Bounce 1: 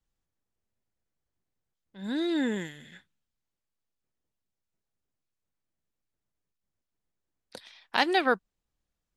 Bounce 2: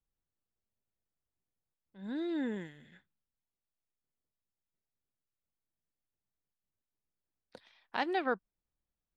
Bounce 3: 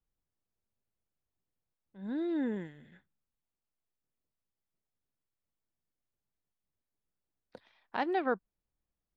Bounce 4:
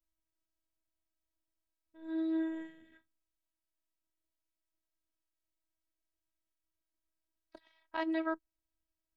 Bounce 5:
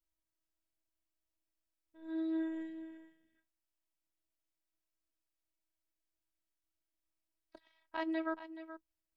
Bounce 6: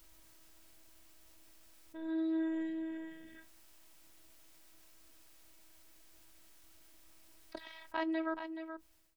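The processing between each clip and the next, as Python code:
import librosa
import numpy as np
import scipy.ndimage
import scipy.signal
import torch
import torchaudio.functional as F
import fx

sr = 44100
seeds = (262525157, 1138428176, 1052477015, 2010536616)

y1 = fx.lowpass(x, sr, hz=1700.0, slope=6)
y1 = F.gain(torch.from_numpy(y1), -6.5).numpy()
y2 = fx.high_shelf(y1, sr, hz=2200.0, db=-10.5)
y2 = F.gain(torch.from_numpy(y2), 2.5).numpy()
y3 = fx.robotise(y2, sr, hz=321.0)
y4 = y3 + 10.0 ** (-12.5 / 20.0) * np.pad(y3, (int(426 * sr / 1000.0), 0))[:len(y3)]
y4 = F.gain(torch.from_numpy(y4), -2.5).numpy()
y5 = fx.fade_out_tail(y4, sr, length_s=1.27)
y5 = fx.env_flatten(y5, sr, amount_pct=50)
y5 = F.gain(torch.from_numpy(y5), 1.0).numpy()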